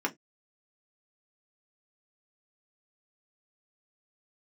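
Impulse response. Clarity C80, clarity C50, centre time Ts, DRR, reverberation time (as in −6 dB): 34.5 dB, 23.5 dB, 7 ms, 0.5 dB, 0.15 s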